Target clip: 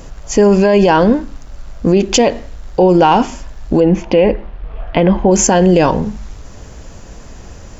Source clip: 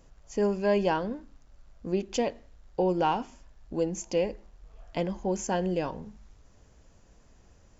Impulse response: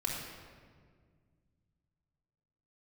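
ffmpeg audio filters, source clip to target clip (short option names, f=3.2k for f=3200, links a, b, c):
-filter_complex "[0:a]asettb=1/sr,asplit=3[a][b][c];[a]atrim=end=3.804[d];[b]atrim=start=3.8:end=5.31,asetpts=PTS-STARTPTS,afade=t=in:d=0.004:c=qsin,afade=t=out:st=1.506:d=0.004:c=qsin,lowpass=f=3.2k:w=0.5412,lowpass=f=3.2k:w=1.3066[e];[c]atrim=start=5.306[f];[d][e]acrossfade=d=0.004:c1=hsin:c2=qsin[g];[g][f]acrossfade=d=0.004:c1=qsin:c2=hsin,alimiter=level_in=25dB:limit=-1dB:release=50:level=0:latency=1,volume=-1dB"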